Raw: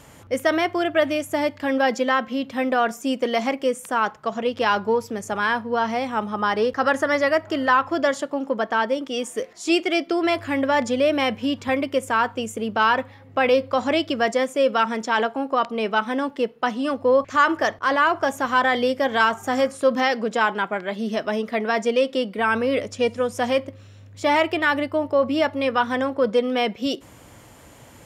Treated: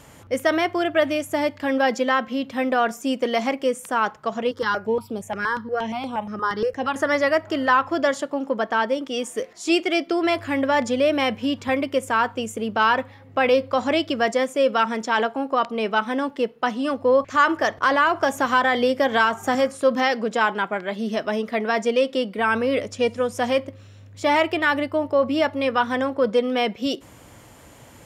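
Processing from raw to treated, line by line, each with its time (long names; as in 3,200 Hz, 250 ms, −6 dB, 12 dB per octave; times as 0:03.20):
0:04.51–0:06.96: step-sequenced phaser 8.5 Hz 700–6,500 Hz
0:17.77–0:19.55: multiband upward and downward compressor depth 70%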